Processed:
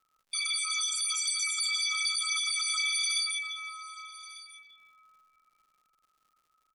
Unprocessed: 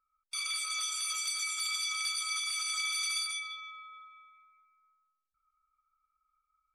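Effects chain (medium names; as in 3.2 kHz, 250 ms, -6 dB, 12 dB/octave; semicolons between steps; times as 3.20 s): resonances exaggerated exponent 2; delay 1197 ms -18 dB; crackle 160 per s -63 dBFS; trim +4 dB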